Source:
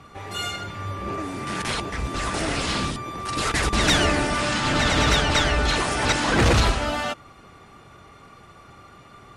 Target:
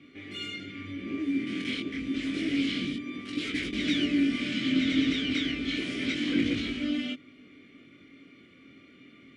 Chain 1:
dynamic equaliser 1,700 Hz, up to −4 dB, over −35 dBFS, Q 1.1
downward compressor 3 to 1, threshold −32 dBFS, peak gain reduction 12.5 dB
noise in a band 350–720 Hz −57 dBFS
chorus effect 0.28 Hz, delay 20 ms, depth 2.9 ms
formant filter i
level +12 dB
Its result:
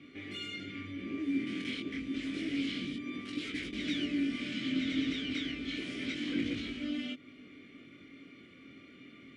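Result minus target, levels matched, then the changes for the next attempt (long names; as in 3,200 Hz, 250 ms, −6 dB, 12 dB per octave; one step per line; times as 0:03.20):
downward compressor: peak gain reduction +7 dB
change: downward compressor 3 to 1, threshold −21.5 dBFS, peak gain reduction 5.5 dB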